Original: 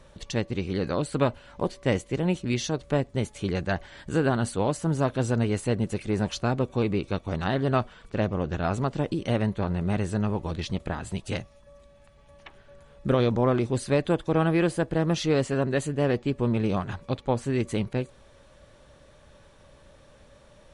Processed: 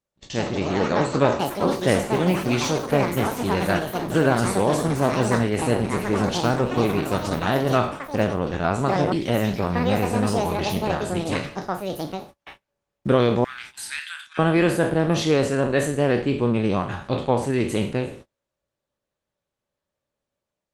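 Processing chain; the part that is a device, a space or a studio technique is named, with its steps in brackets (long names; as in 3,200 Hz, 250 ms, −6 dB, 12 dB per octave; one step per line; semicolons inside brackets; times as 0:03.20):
peak hold with a decay on every bin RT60 0.55 s
0:13.44–0:14.39: elliptic high-pass filter 1,500 Hz, stop band 70 dB
delay with pitch and tempo change per echo 151 ms, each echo +7 semitones, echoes 3, each echo −6 dB
video call (high-pass filter 110 Hz 6 dB per octave; automatic gain control gain up to 4.5 dB; noise gate −39 dBFS, range −34 dB; Opus 20 kbit/s 48,000 Hz)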